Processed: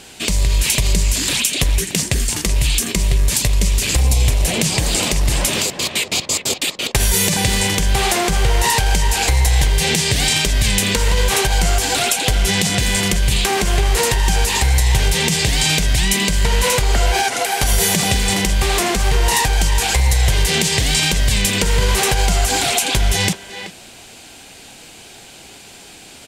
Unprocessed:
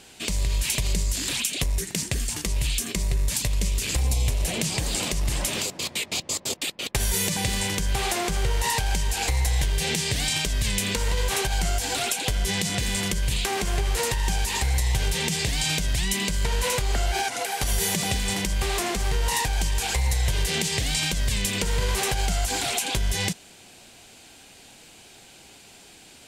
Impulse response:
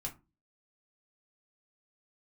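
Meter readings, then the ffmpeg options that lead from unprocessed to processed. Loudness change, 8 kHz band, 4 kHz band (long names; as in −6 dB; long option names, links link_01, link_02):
+9.0 dB, +9.0 dB, +9.0 dB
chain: -filter_complex "[0:a]acontrast=36,asplit=2[link_01][link_02];[link_02]adelay=380,highpass=300,lowpass=3400,asoftclip=type=hard:threshold=-14.5dB,volume=-9dB[link_03];[link_01][link_03]amix=inputs=2:normalize=0,volume=3.5dB"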